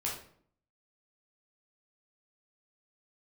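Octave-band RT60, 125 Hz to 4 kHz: 0.75, 0.75, 0.60, 0.55, 0.45, 0.40 s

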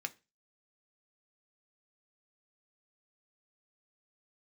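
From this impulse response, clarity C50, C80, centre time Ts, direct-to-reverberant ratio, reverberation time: 22.0 dB, 28.0 dB, 3 ms, 7.0 dB, 0.30 s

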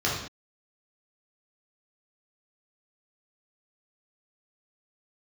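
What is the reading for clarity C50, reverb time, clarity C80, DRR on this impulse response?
2.0 dB, not exponential, 6.0 dB, -6.0 dB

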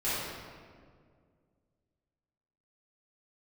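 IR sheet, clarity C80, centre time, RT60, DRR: -1.0 dB, 0.126 s, 2.0 s, -13.0 dB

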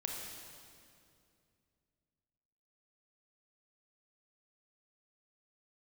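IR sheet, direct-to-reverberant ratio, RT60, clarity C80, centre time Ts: -0.5 dB, 2.4 s, 2.5 dB, 96 ms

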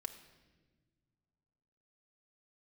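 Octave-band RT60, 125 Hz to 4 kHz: 2.7, 2.5, 1.7, 1.1, 1.2, 1.1 s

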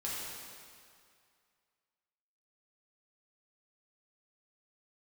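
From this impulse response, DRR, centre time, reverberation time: -7.0 dB, 0.138 s, 2.2 s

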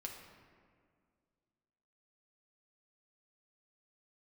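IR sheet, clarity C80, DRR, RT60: 6.0 dB, 0.0 dB, 2.0 s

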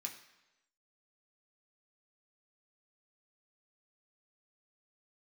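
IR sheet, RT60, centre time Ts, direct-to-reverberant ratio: 1.0 s, 19 ms, 0.5 dB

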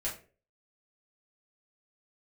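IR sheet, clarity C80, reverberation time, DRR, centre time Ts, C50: 14.5 dB, 0.40 s, -6.5 dB, 26 ms, 9.0 dB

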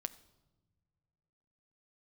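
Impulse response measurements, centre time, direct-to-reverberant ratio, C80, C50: 3 ms, 11.5 dB, 19.0 dB, 17.5 dB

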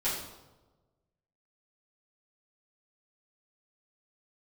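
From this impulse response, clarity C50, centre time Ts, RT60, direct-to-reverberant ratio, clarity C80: 2.5 dB, 52 ms, 1.2 s, -11.5 dB, 5.5 dB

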